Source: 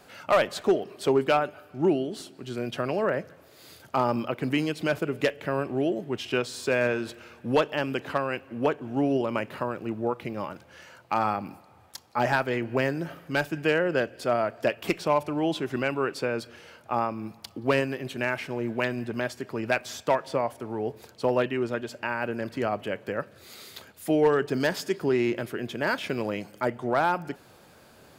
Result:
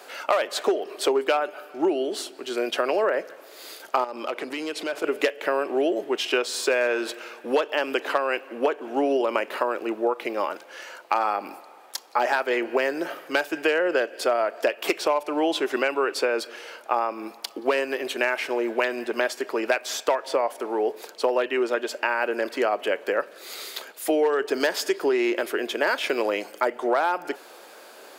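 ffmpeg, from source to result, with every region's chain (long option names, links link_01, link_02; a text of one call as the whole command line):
ffmpeg -i in.wav -filter_complex "[0:a]asettb=1/sr,asplit=3[link_01][link_02][link_03];[link_01]atrim=end=4.044[link_04];[link_02]atrim=start=4.04:end=5.04,asetpts=PTS-STARTPTS,afade=type=in:duration=0.004:curve=qsin,afade=type=out:start_time=0.996:duration=0.004:curve=qsin,lowpass=11000,acompressor=threshold=-30dB:ratio=10:attack=3.2:release=140:knee=1:detection=peak,volume=28dB,asoftclip=hard,volume=-28dB[link_05];[link_03]atrim=start=5.036[link_06];[link_04][link_05]acrossfade=duration=0.004:curve1=hsin:curve2=qsin[link_07];[link_07][link_06]acrossfade=duration=0.004:curve1=qsin:curve2=hsin,highpass=frequency=350:width=0.5412,highpass=frequency=350:width=1.3066,acompressor=threshold=-28dB:ratio=6,volume=9dB" out.wav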